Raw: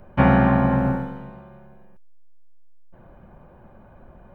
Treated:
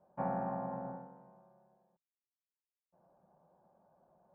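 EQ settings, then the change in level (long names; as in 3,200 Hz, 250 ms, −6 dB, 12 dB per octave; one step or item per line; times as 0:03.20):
transistor ladder low-pass 910 Hz, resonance 40%
first difference
parametric band 170 Hz +12 dB 0.5 octaves
+9.0 dB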